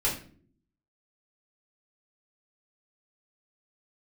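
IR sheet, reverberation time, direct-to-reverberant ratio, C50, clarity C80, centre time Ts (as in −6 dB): non-exponential decay, −7.0 dB, 7.5 dB, 12.0 dB, 28 ms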